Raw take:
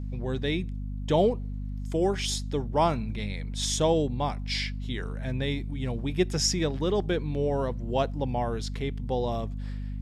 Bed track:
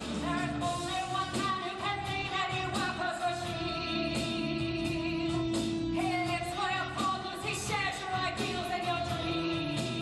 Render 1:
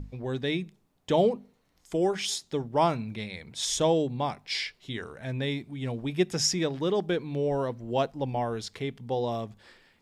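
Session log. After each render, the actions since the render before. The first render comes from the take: hum notches 50/100/150/200/250 Hz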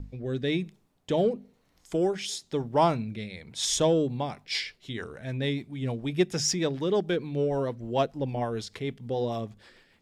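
rotary cabinet horn 1 Hz, later 6.7 Hz, at 3.69 s; in parallel at -9 dB: saturation -22 dBFS, distortion -14 dB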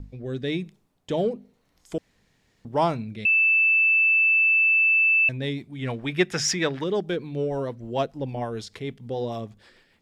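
1.98–2.65 s: room tone; 3.25–5.29 s: bleep 2.64 kHz -16 dBFS; 5.79–6.84 s: peaking EQ 1.7 kHz +12 dB 1.9 oct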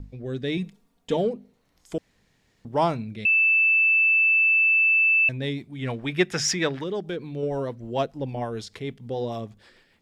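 0.57–1.17 s: comb 4.3 ms, depth 90%; 6.75–7.43 s: compression 1.5:1, threshold -32 dBFS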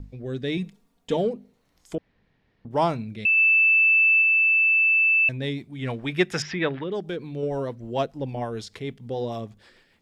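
1.95–2.71 s: distance through air 290 m; 3.37–4.22 s: dynamic bell 1.2 kHz, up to +4 dB, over -34 dBFS, Q 0.75; 6.42–6.92 s: low-pass 3.4 kHz 24 dB/octave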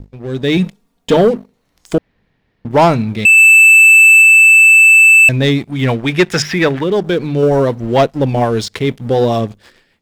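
level rider gain up to 9.5 dB; waveshaping leveller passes 2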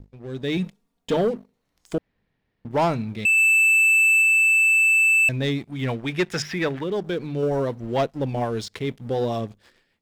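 trim -11.5 dB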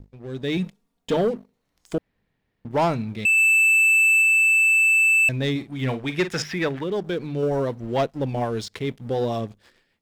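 5.51–6.44 s: doubling 46 ms -11 dB

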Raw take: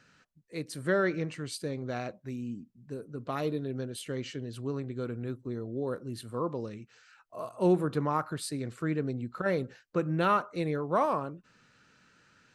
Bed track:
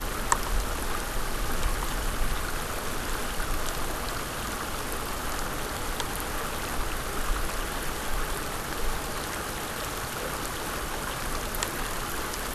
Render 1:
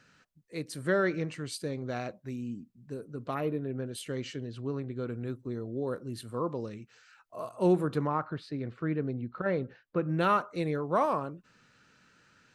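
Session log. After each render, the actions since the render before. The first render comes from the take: 3.34–3.86 s: high-order bell 5.7 kHz -14.5 dB; 4.47–5.09 s: distance through air 100 m; 8.07–10.09 s: distance through air 260 m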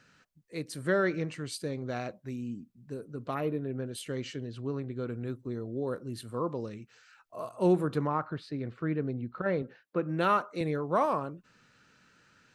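9.62–10.61 s: high-pass 170 Hz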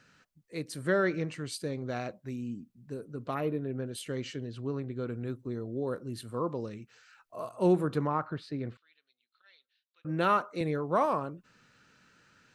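8.77–10.05 s: ladder band-pass 4.1 kHz, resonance 60%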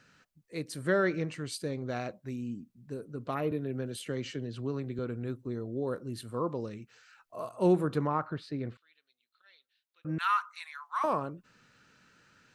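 3.51–4.99 s: three bands compressed up and down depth 40%; 10.18–11.04 s: steep high-pass 1 kHz 48 dB/octave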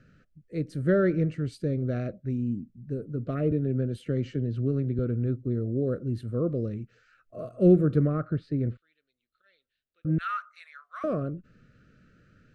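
Chebyshev band-stop 630–1300 Hz, order 2; tilt EQ -4 dB/octave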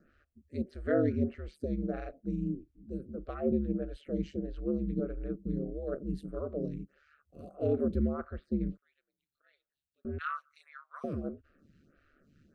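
ring modulator 73 Hz; lamp-driven phase shifter 1.6 Hz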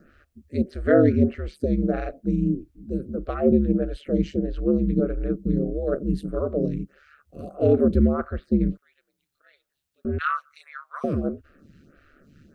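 trim +11 dB

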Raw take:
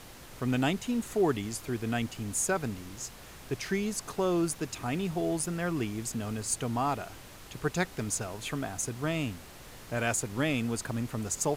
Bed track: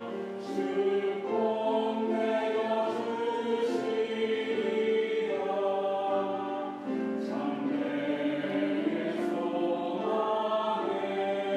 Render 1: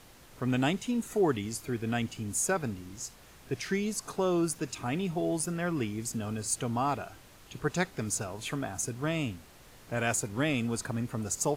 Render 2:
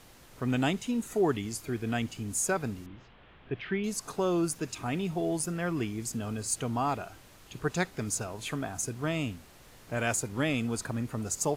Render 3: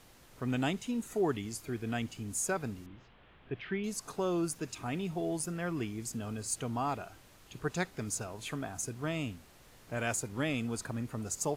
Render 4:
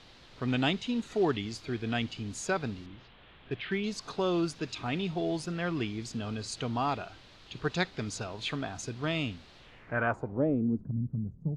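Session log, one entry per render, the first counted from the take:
noise print and reduce 6 dB
2.86–3.84 s: Chebyshev low-pass 3.3 kHz, order 4
trim -4 dB
in parallel at -8 dB: short-mantissa float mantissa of 2-bit; on the sum: low-pass sweep 4 kHz -> 170 Hz, 9.57–10.93 s

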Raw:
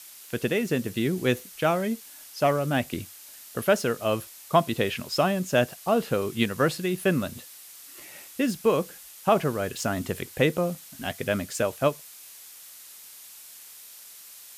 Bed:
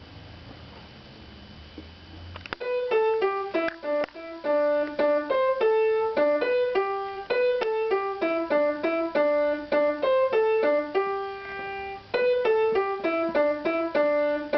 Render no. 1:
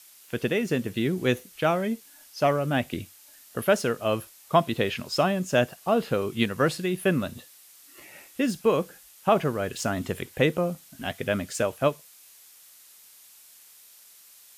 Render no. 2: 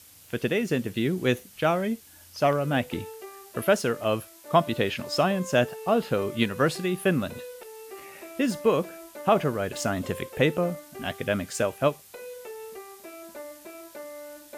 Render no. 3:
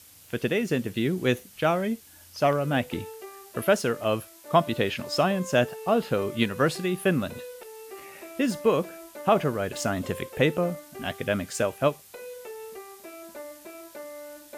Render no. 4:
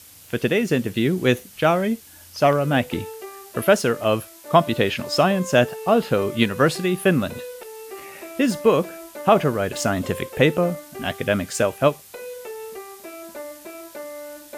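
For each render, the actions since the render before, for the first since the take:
noise print and reduce 6 dB
add bed -18 dB
no audible change
trim +5.5 dB; peak limiter -2 dBFS, peak gain reduction 1 dB

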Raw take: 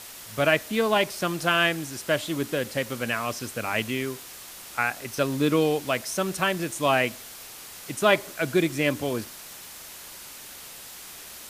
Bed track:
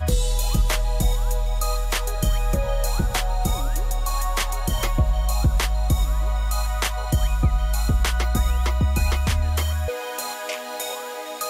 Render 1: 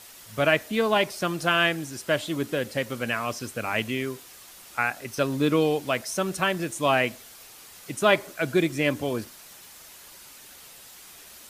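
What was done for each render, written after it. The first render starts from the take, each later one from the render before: noise reduction 6 dB, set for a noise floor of -43 dBFS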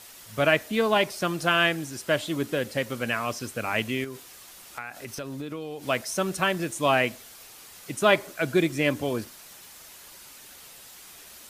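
4.04–5.84 s: compression, threshold -32 dBFS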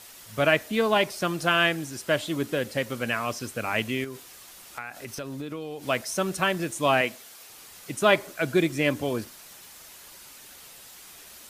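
7.01–7.50 s: high-pass 270 Hz 6 dB/octave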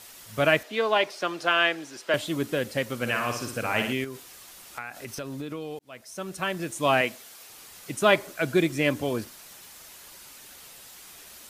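0.63–2.14 s: three-band isolator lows -19 dB, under 300 Hz, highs -13 dB, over 6 kHz; 2.96–3.93 s: flutter echo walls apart 10 m, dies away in 0.58 s; 5.79–6.93 s: fade in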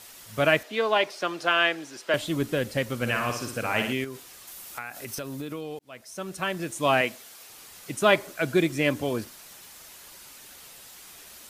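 2.21–3.30 s: bass shelf 94 Hz +11 dB; 4.47–5.61 s: treble shelf 9.7 kHz +10 dB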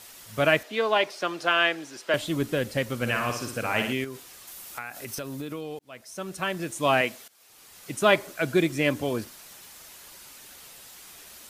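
7.28–7.96 s: fade in, from -18 dB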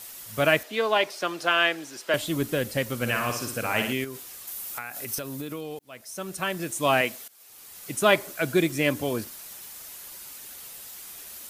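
treble shelf 9.9 kHz +11.5 dB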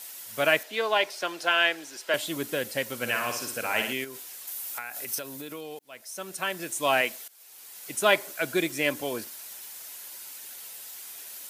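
high-pass 490 Hz 6 dB/octave; band-stop 1.2 kHz, Q 11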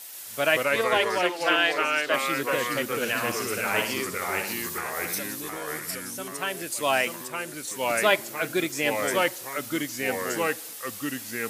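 ever faster or slower copies 127 ms, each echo -2 st, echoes 3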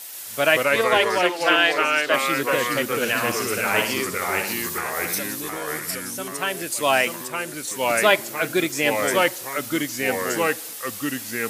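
trim +4.5 dB; peak limiter -3 dBFS, peak gain reduction 1 dB

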